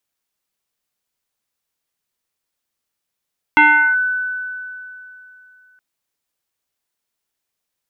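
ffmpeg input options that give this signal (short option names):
-f lavfi -i "aevalsrc='0.501*pow(10,-3*t/2.98)*sin(2*PI*1500*t+1.5*clip(1-t/0.39,0,1)*sin(2*PI*0.4*1500*t))':d=2.22:s=44100"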